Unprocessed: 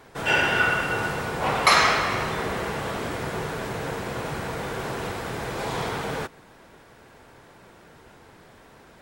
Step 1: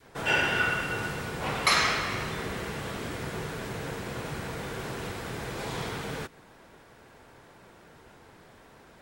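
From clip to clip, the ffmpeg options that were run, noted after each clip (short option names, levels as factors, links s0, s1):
-af "adynamicequalizer=threshold=0.0141:dfrequency=790:dqfactor=0.74:tfrequency=790:tqfactor=0.74:attack=5:release=100:ratio=0.375:range=3.5:mode=cutabove:tftype=bell,volume=0.708"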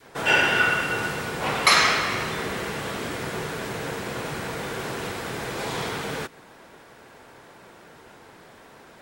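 -af "lowshelf=f=120:g=-10.5,volume=2"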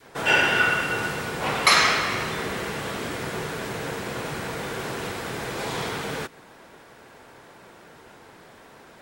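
-af anull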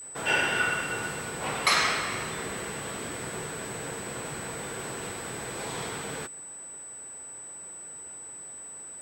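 -af "aeval=exprs='val(0)+0.02*sin(2*PI*8000*n/s)':c=same,volume=0.501"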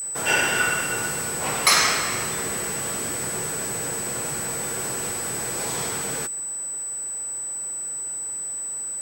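-af "aexciter=amount=1.4:drive=9.6:freq=5000,volume=1.58"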